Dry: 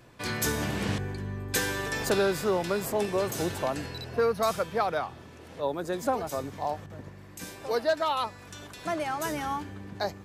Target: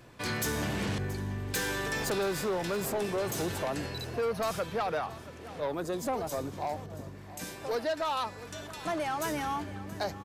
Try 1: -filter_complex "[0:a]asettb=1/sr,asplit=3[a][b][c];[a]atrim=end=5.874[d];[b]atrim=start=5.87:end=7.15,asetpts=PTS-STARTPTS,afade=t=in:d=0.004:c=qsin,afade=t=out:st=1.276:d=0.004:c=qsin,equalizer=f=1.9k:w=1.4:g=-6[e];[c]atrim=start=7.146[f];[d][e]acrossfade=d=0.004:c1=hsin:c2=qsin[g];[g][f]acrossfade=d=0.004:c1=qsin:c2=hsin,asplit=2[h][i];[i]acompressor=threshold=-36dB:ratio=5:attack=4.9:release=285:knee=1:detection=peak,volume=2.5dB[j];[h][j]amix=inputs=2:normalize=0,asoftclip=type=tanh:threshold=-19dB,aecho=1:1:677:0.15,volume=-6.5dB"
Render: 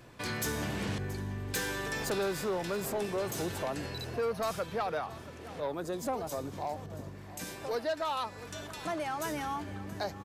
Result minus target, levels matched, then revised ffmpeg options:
compressor: peak gain reduction +8.5 dB
-filter_complex "[0:a]asettb=1/sr,asplit=3[a][b][c];[a]atrim=end=5.874[d];[b]atrim=start=5.87:end=7.15,asetpts=PTS-STARTPTS,afade=t=in:d=0.004:c=qsin,afade=t=out:st=1.276:d=0.004:c=qsin,equalizer=f=1.9k:w=1.4:g=-6[e];[c]atrim=start=7.146[f];[d][e]acrossfade=d=0.004:c1=hsin:c2=qsin[g];[g][f]acrossfade=d=0.004:c1=qsin:c2=hsin,asplit=2[h][i];[i]acompressor=threshold=-25.5dB:ratio=5:attack=4.9:release=285:knee=1:detection=peak,volume=2.5dB[j];[h][j]amix=inputs=2:normalize=0,asoftclip=type=tanh:threshold=-19dB,aecho=1:1:677:0.15,volume=-6.5dB"

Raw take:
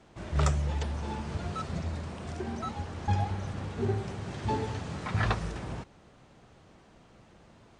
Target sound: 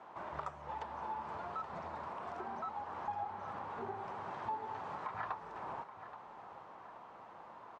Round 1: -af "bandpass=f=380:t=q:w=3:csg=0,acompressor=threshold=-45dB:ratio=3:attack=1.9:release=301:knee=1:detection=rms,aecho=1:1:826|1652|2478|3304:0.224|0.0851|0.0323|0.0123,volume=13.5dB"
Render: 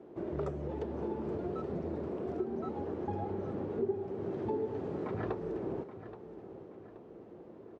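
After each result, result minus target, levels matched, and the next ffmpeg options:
1000 Hz band -12.0 dB; compressor: peak gain reduction -5 dB
-af "bandpass=f=970:t=q:w=3:csg=0,acompressor=threshold=-45dB:ratio=3:attack=1.9:release=301:knee=1:detection=rms,aecho=1:1:826|1652|2478|3304:0.224|0.0851|0.0323|0.0123,volume=13.5dB"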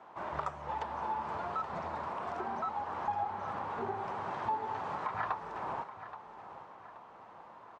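compressor: peak gain reduction -5.5 dB
-af "bandpass=f=970:t=q:w=3:csg=0,acompressor=threshold=-53.5dB:ratio=3:attack=1.9:release=301:knee=1:detection=rms,aecho=1:1:826|1652|2478|3304:0.224|0.0851|0.0323|0.0123,volume=13.5dB"

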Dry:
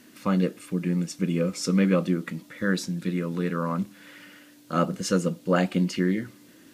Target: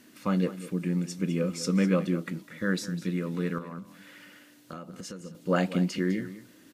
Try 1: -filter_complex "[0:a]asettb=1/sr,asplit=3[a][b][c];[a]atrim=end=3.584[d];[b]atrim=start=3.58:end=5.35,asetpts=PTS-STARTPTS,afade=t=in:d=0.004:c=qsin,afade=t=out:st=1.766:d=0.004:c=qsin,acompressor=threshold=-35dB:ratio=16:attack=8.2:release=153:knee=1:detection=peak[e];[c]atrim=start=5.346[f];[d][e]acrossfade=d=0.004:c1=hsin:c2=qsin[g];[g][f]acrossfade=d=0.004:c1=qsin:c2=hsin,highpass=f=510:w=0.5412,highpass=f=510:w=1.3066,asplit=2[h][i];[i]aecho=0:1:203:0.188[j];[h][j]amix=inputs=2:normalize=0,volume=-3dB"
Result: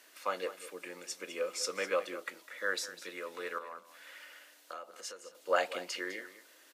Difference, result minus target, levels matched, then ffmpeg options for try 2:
500 Hz band +4.5 dB
-filter_complex "[0:a]asettb=1/sr,asplit=3[a][b][c];[a]atrim=end=3.584[d];[b]atrim=start=3.58:end=5.35,asetpts=PTS-STARTPTS,afade=t=in:d=0.004:c=qsin,afade=t=out:st=1.766:d=0.004:c=qsin,acompressor=threshold=-35dB:ratio=16:attack=8.2:release=153:knee=1:detection=peak[e];[c]atrim=start=5.346[f];[d][e]acrossfade=d=0.004:c1=hsin:c2=qsin[g];[g][f]acrossfade=d=0.004:c1=qsin:c2=hsin,asplit=2[h][i];[i]aecho=0:1:203:0.188[j];[h][j]amix=inputs=2:normalize=0,volume=-3dB"

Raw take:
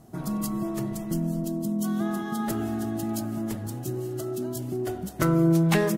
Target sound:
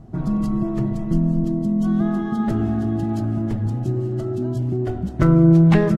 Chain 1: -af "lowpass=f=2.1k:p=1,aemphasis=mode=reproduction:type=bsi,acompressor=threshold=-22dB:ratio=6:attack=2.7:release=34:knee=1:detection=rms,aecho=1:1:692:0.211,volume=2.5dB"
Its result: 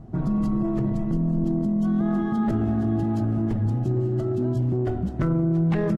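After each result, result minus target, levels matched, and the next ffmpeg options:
compressor: peak gain reduction +11 dB; 4000 Hz band -4.0 dB
-af "lowpass=f=2.1k:p=1,aemphasis=mode=reproduction:type=bsi,aecho=1:1:692:0.211,volume=2.5dB"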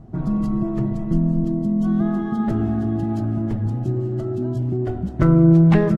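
4000 Hz band -3.5 dB
-af "lowpass=f=4.6k:p=1,aemphasis=mode=reproduction:type=bsi,aecho=1:1:692:0.211,volume=2.5dB"

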